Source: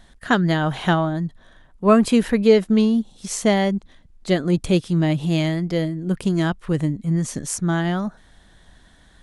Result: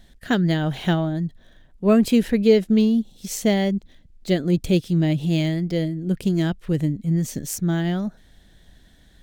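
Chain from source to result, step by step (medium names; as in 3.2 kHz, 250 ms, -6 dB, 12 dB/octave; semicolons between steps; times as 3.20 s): peaking EQ 1.1 kHz -11.5 dB 1.1 oct; decimation joined by straight lines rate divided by 2×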